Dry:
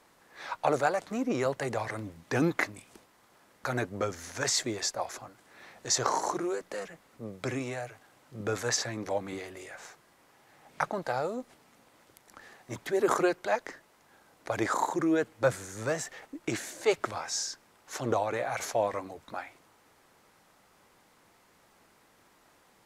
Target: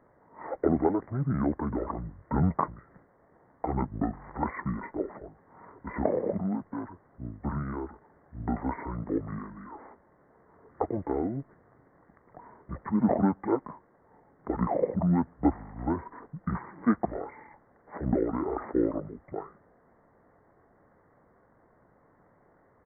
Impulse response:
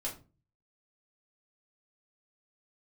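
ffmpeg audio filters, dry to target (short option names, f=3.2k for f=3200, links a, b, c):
-af "aresample=8000,aresample=44100,asetrate=24046,aresample=44100,atempo=1.83401,volume=2dB"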